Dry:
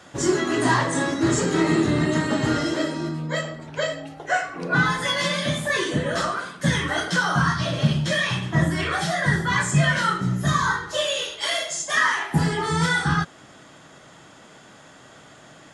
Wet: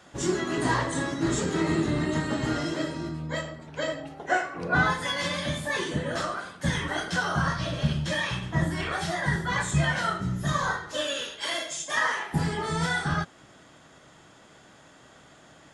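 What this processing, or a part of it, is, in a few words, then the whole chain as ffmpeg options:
octave pedal: -filter_complex "[0:a]asettb=1/sr,asplit=3[a][b][c];[a]atrim=end=3.874[d];[b]atrim=start=3.87:end=4.94,asetpts=PTS-STARTPTS,afade=t=in:d=0.004:c=qsin,afade=t=out:st=1.066:d=0.004:c=qsin,equalizer=f=790:w=0.38:g=4[e];[c]atrim=start=4.936[f];[d][e]acrossfade=d=0.004:c1=hsin:c2=qsin[g];[g][f]acrossfade=d=0.004:c1=qsin:c2=hsin,asplit=2[h][i];[i]asetrate=22050,aresample=44100,atempo=2,volume=-9dB[j];[h][j]amix=inputs=2:normalize=0,volume=-6dB"

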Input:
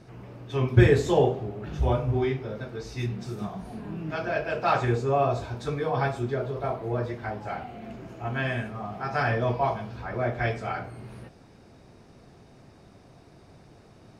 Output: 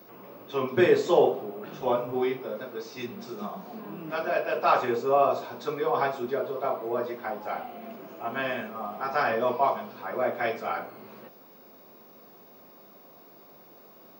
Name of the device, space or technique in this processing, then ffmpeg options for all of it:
old television with a line whistle: -af "highpass=f=210:w=0.5412,highpass=f=210:w=1.3066,equalizer=f=290:t=q:w=4:g=-3,equalizer=f=540:t=q:w=4:g=4,equalizer=f=1.1k:t=q:w=4:g=6,equalizer=f=1.8k:t=q:w=4:g=-3,lowpass=f=6.6k:w=0.5412,lowpass=f=6.6k:w=1.3066,aeval=exprs='val(0)+0.00224*sin(2*PI*15625*n/s)':c=same"

